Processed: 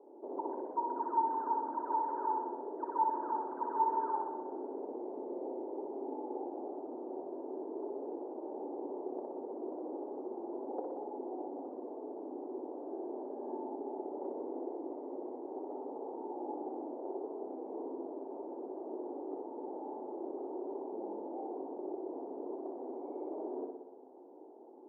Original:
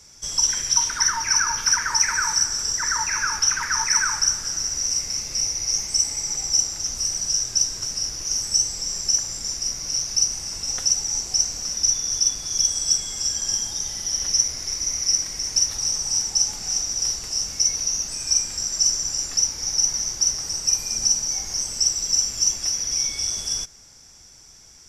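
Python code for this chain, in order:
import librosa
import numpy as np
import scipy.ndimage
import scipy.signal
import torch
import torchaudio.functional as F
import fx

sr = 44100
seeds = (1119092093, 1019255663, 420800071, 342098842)

y = fx.room_flutter(x, sr, wall_m=10.5, rt60_s=0.9)
y = fx.rider(y, sr, range_db=10, speed_s=2.0)
y = scipy.signal.sosfilt(scipy.signal.cheby1(4, 1.0, [260.0, 900.0], 'bandpass', fs=sr, output='sos'), y)
y = fx.peak_eq(y, sr, hz=380.0, db=11.0, octaves=0.71)
y = y * librosa.db_to_amplitude(1.0)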